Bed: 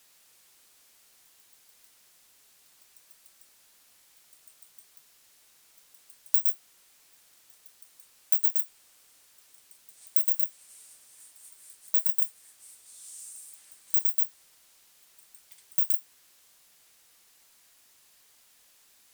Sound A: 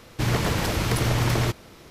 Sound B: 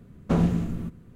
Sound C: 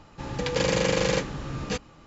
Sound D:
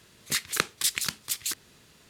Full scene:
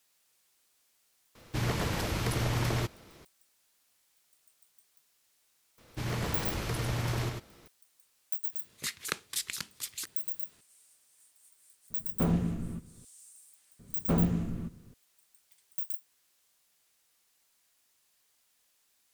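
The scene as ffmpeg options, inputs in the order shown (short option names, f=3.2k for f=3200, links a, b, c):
-filter_complex "[1:a]asplit=2[a][b];[2:a]asplit=2[c][d];[0:a]volume=-10.5dB[e];[b]aecho=1:1:99:0.631[f];[4:a]aresample=32000,aresample=44100[g];[a]atrim=end=1.9,asetpts=PTS-STARTPTS,volume=-7.5dB,afade=t=in:d=0.004:c=hsin,afade=t=out:st=1.896:d=0.004:c=hsin,adelay=1350[h];[f]atrim=end=1.9,asetpts=PTS-STARTPTS,volume=-11.5dB,afade=t=in:d=0.004:c=hsin,afade=t=out:st=1.896:d=0.004:c=hsin,adelay=5780[i];[g]atrim=end=2.09,asetpts=PTS-STARTPTS,volume=-8dB,afade=t=in:d=0.004:c=hsin,afade=t=out:st=2.086:d=0.004:c=hsin,adelay=8520[j];[c]atrim=end=1.15,asetpts=PTS-STARTPTS,volume=-6dB,afade=t=in:d=0.004:c=hsin,afade=t=out:st=1.146:d=0.004:c=hsin,adelay=11900[k];[d]atrim=end=1.15,asetpts=PTS-STARTPTS,volume=-5dB,afade=t=in:d=0.004:c=hsin,afade=t=out:st=1.146:d=0.004:c=hsin,adelay=13790[l];[e][h][i][j][k][l]amix=inputs=6:normalize=0"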